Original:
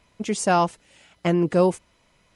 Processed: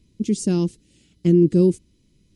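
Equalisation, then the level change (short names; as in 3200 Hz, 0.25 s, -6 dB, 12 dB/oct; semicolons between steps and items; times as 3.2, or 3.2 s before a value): EQ curve 350 Hz 0 dB, 690 Hz -29 dB, 1300 Hz -28 dB, 4200 Hz -9 dB; +6.5 dB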